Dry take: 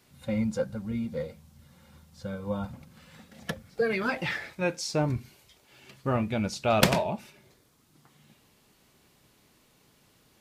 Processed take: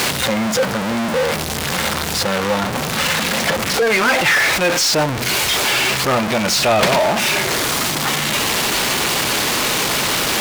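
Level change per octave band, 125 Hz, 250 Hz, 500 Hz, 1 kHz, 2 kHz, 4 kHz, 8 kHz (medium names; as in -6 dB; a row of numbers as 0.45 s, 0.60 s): +8.0 dB, +10.0 dB, +12.5 dB, +16.5 dB, +19.5 dB, +22.0 dB, +23.5 dB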